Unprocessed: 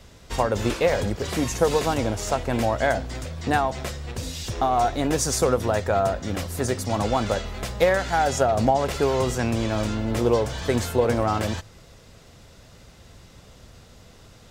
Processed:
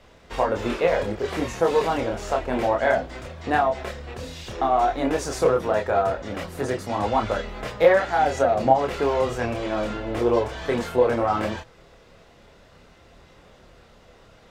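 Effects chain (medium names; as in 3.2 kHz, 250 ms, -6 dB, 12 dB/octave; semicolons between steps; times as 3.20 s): bass shelf 280 Hz +5.5 dB; chorus voices 4, 0.47 Hz, delay 27 ms, depth 3.3 ms; tone controls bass -13 dB, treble -12 dB; trim +4 dB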